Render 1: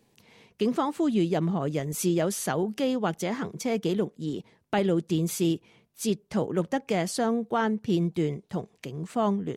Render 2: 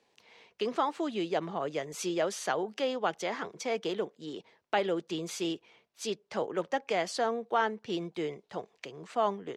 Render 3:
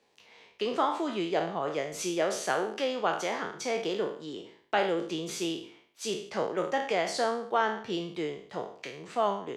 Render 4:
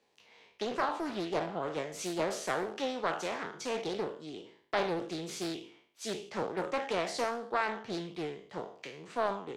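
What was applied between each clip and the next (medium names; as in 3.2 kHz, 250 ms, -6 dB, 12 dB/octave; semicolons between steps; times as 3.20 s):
three-band isolator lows -18 dB, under 400 Hz, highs -19 dB, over 6.6 kHz
spectral sustain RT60 0.53 s
loudspeaker Doppler distortion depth 0.42 ms; trim -4 dB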